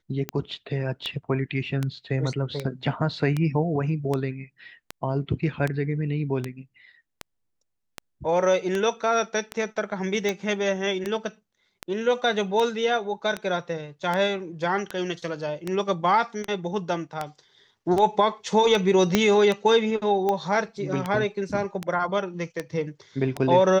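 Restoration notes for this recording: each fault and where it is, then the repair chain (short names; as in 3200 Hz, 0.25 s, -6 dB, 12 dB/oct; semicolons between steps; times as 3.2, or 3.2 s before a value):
tick 78 rpm -13 dBFS
19.15 pop -4 dBFS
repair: de-click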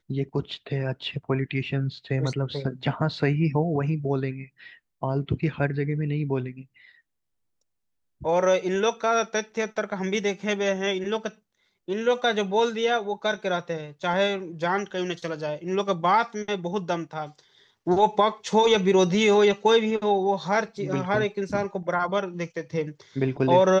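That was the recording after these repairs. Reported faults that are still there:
19.15 pop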